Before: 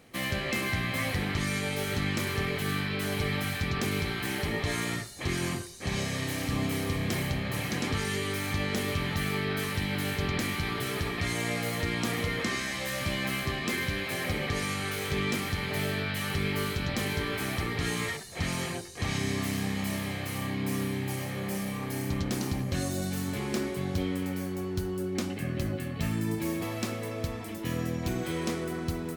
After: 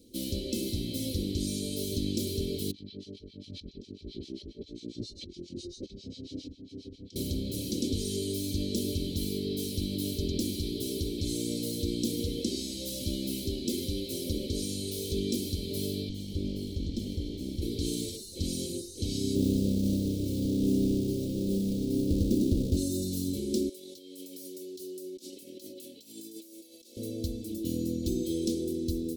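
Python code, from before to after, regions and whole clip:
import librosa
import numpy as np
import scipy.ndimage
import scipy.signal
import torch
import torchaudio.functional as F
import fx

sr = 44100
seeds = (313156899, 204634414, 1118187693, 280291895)

y = fx.chain(x, sr, fx.lowpass(hz=5400.0, slope=24),
    fx.over_compress(threshold_db=-36.0, ratio=-0.5),
    fx.harmonic_tremolo(hz=7.4, depth_pct=100, crossover_hz=1100.0), at=(2.71, 7.16))
y = fx.chain(y, sr, fx.lower_of_two(delay_ms=0.92),
    fx.lowpass(hz=1900.0, slope=6), at=(16.09, 17.62))
y = fx.chain(y, sr, fx.halfwave_hold(),
    fx.high_shelf(hz=2100.0, db=-8.5), at=(19.35, 22.77))
y = fx.chain(y, sr, fx.highpass(hz=680.0, slope=12),
    fx.over_compress(threshold_db=-44.0, ratio=-0.5), at=(23.69, 26.97))
y = scipy.signal.sosfilt(scipy.signal.cheby1(3, 1.0, [420.0, 3800.0], 'bandstop', fs=sr, output='sos'), y)
y = fx.peak_eq(y, sr, hz=430.0, db=8.5, octaves=0.29)
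y = y + 0.7 * np.pad(y, (int(3.5 * sr / 1000.0), 0))[:len(y)]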